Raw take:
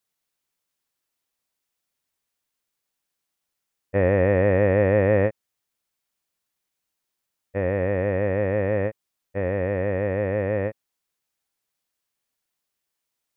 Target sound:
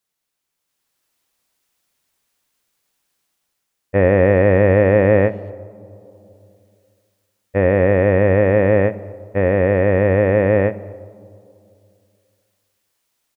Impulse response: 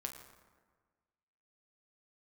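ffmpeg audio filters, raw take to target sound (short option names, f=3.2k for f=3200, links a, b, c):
-filter_complex "[0:a]asplit=2[a][b];[b]adelay=230,highpass=300,lowpass=3.4k,asoftclip=type=hard:threshold=-16dB,volume=-27dB[c];[a][c]amix=inputs=2:normalize=0,asplit=2[d][e];[1:a]atrim=start_sample=2205,asetrate=26019,aresample=44100[f];[e][f]afir=irnorm=-1:irlink=0,volume=-11dB[g];[d][g]amix=inputs=2:normalize=0,dynaudnorm=f=530:g=3:m=9dB"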